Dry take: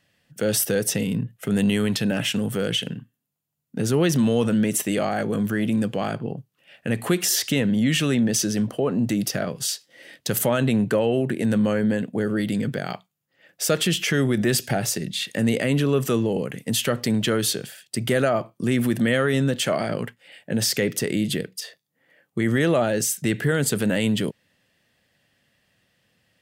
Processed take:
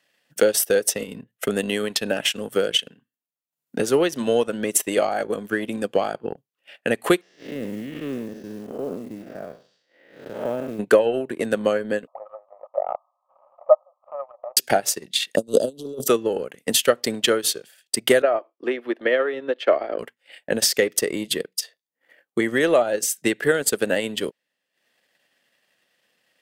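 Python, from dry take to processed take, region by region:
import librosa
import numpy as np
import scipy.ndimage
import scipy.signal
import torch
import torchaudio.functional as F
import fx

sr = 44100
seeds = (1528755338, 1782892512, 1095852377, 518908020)

y = fx.chain(x, sr, fx.spec_blur(span_ms=232.0),
    fx.spacing_loss(db_at_10k=45),
    fx.quant_float(bits=4), at=(7.21, 10.79))
y = fx.chain(y, sr, fx.crossing_spikes(level_db=-23.5),
    fx.brickwall_bandpass(low_hz=530.0, high_hz=1300.0),
    fx.tilt_shelf(db=5.5, hz=930.0), at=(12.07, 14.57))
y = fx.chain(y, sr, fx.cheby2_bandstop(low_hz=930.0, high_hz=2400.0, order=4, stop_db=40),
    fx.over_compress(threshold_db=-24.0, ratio=-0.5), at=(15.36, 16.08))
y = fx.chain(y, sr, fx.steep_highpass(hz=290.0, slope=36),
    fx.air_absorb(metres=330.0),
    fx.notch(hz=1500.0, q=27.0), at=(18.22, 19.99))
y = scipy.signal.sosfilt(scipy.signal.butter(2, 360.0, 'highpass', fs=sr, output='sos'), y)
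y = fx.dynamic_eq(y, sr, hz=540.0, q=0.89, threshold_db=-34.0, ratio=4.0, max_db=3)
y = fx.transient(y, sr, attack_db=9, sustain_db=-12)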